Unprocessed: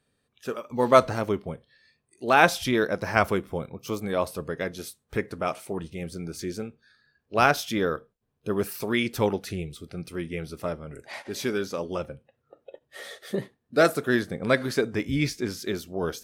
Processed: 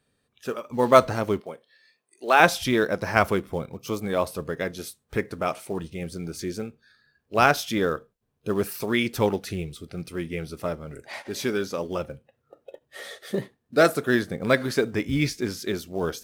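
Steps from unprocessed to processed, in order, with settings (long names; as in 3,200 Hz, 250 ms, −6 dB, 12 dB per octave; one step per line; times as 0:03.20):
0:01.40–0:02.40: high-pass filter 380 Hz 12 dB per octave
in parallel at −9.5 dB: floating-point word with a short mantissa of 2 bits
on the sum: level −1 dB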